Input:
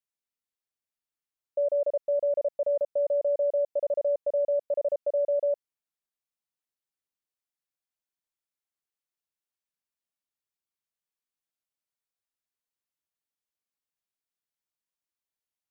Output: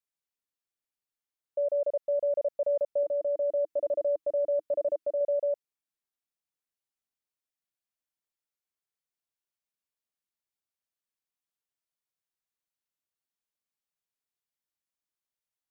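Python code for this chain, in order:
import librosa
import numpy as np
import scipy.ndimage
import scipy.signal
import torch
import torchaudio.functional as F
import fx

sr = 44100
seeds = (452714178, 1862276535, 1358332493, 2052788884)

y = fx.graphic_eq_31(x, sr, hz=(315, 500, 800), db=(8, -7, -5), at=(3.03, 5.21))
y = fx.rider(y, sr, range_db=10, speed_s=0.5)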